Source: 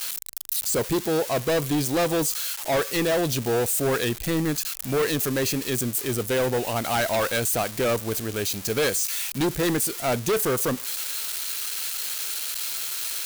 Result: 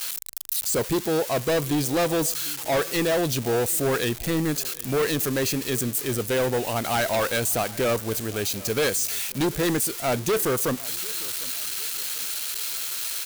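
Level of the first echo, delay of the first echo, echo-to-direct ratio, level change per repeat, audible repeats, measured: -21.5 dB, 0.751 s, -20.5 dB, -7.5 dB, 2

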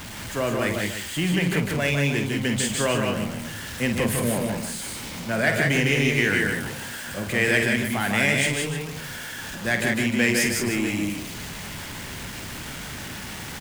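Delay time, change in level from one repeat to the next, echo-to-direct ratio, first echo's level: 50 ms, no steady repeat, -0.5 dB, -8.5 dB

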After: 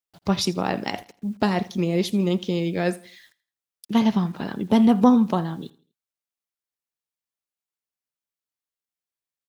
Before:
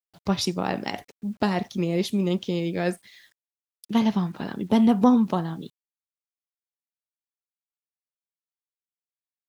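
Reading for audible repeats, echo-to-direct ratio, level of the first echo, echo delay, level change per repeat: 2, -20.5 dB, -21.0 dB, 82 ms, -9.0 dB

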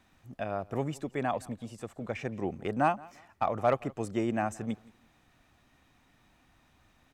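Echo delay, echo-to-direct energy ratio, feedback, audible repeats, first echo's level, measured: 0.171 s, -22.5 dB, 28%, 2, -23.0 dB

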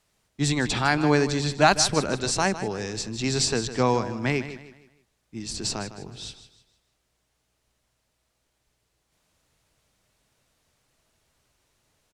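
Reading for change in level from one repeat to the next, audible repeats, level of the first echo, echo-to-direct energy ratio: -9.0 dB, 3, -13.0 dB, -12.5 dB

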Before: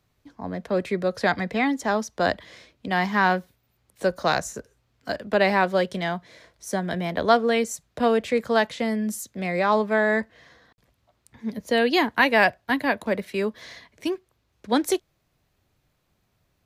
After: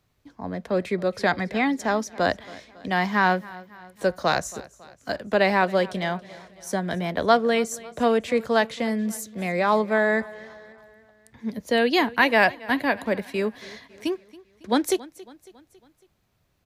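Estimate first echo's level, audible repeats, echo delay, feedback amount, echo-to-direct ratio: -20.5 dB, 3, 0.276 s, 52%, -19.0 dB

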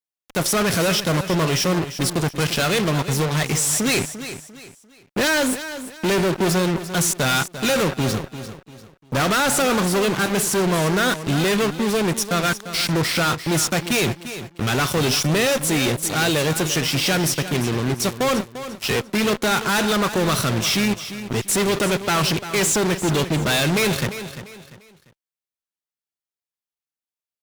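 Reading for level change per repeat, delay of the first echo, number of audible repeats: -9.5 dB, 0.346 s, 3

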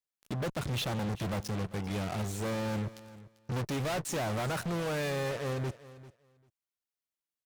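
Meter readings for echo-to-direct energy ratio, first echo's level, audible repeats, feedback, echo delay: -17.5 dB, -17.5 dB, 2, 16%, 0.394 s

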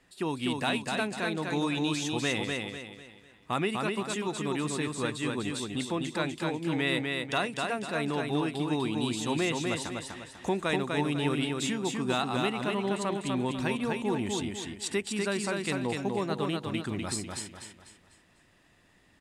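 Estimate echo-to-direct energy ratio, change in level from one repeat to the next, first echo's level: -3.0 dB, -8.5 dB, -3.5 dB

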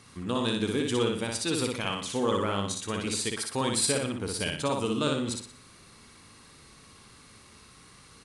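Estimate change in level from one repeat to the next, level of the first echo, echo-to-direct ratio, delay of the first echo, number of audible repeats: -8.0 dB, -3.0 dB, -2.5 dB, 60 ms, 5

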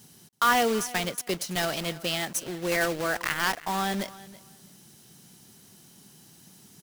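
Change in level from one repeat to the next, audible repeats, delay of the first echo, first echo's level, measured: -14.0 dB, 2, 0.328 s, -19.0 dB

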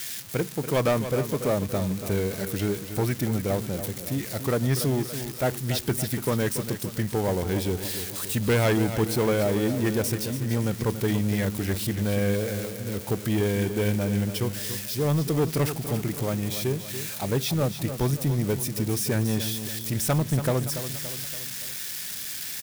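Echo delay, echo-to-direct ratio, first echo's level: 0.285 s, -9.0 dB, -10.5 dB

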